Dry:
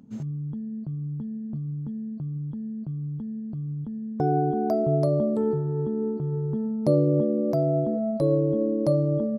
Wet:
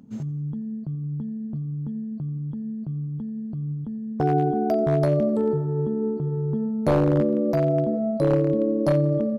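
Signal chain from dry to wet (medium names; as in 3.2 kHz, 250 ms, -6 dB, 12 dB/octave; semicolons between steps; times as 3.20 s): one-sided wavefolder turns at -16 dBFS; modulated delay 87 ms, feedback 64%, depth 58 cents, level -21 dB; trim +2 dB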